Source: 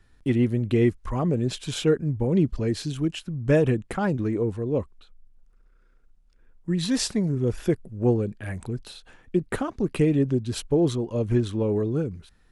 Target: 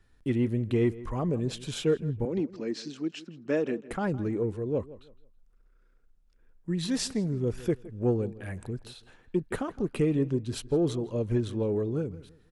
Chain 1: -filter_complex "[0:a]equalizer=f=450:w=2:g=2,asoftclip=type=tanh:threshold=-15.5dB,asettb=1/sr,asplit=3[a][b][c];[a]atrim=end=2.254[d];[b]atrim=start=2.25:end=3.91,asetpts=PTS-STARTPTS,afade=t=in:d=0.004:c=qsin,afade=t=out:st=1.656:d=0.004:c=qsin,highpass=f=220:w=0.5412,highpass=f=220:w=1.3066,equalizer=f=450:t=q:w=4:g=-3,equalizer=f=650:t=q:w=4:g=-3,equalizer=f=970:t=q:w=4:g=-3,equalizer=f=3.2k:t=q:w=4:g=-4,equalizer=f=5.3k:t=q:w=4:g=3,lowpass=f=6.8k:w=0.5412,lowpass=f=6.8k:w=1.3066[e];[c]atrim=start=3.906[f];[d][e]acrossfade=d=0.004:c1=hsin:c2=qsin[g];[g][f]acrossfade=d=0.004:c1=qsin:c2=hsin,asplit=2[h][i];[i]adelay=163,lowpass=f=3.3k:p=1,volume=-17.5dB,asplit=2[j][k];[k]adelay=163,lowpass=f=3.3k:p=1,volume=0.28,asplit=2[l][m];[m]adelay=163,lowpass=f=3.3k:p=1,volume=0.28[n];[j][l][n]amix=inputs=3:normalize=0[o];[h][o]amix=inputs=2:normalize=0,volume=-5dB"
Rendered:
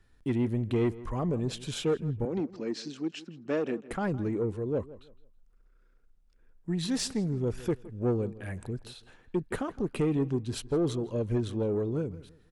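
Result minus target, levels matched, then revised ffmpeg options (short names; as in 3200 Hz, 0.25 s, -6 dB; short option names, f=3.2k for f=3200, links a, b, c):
soft clip: distortion +13 dB
-filter_complex "[0:a]equalizer=f=450:w=2:g=2,asoftclip=type=tanh:threshold=-7.5dB,asettb=1/sr,asplit=3[a][b][c];[a]atrim=end=2.254[d];[b]atrim=start=2.25:end=3.91,asetpts=PTS-STARTPTS,afade=t=in:d=0.004:c=qsin,afade=t=out:st=1.656:d=0.004:c=qsin,highpass=f=220:w=0.5412,highpass=f=220:w=1.3066,equalizer=f=450:t=q:w=4:g=-3,equalizer=f=650:t=q:w=4:g=-3,equalizer=f=970:t=q:w=4:g=-3,equalizer=f=3.2k:t=q:w=4:g=-4,equalizer=f=5.3k:t=q:w=4:g=3,lowpass=f=6.8k:w=0.5412,lowpass=f=6.8k:w=1.3066[e];[c]atrim=start=3.906[f];[d][e]acrossfade=d=0.004:c1=hsin:c2=qsin[g];[g][f]acrossfade=d=0.004:c1=qsin:c2=hsin,asplit=2[h][i];[i]adelay=163,lowpass=f=3.3k:p=1,volume=-17.5dB,asplit=2[j][k];[k]adelay=163,lowpass=f=3.3k:p=1,volume=0.28,asplit=2[l][m];[m]adelay=163,lowpass=f=3.3k:p=1,volume=0.28[n];[j][l][n]amix=inputs=3:normalize=0[o];[h][o]amix=inputs=2:normalize=0,volume=-5dB"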